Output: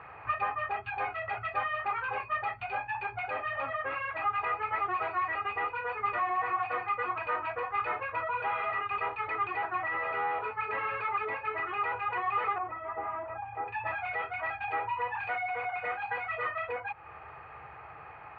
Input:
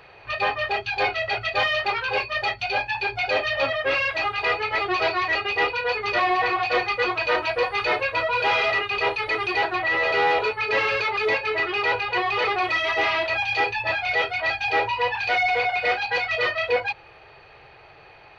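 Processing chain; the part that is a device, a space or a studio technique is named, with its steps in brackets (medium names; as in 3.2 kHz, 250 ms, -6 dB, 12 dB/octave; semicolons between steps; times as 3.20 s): bass amplifier (compression 4:1, threshold -33 dBFS, peak gain reduction 13.5 dB; cabinet simulation 71–2200 Hz, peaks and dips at 73 Hz +7 dB, 380 Hz -7 dB, 570 Hz -5 dB, 840 Hz +3 dB, 1.2 kHz +9 dB); 12.58–13.68 s: low-pass 1 kHz 12 dB/octave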